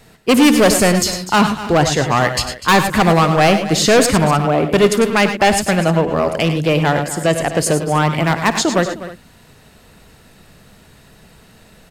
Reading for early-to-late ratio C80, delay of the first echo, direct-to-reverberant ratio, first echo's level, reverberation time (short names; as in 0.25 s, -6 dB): none, 54 ms, none, -18.0 dB, none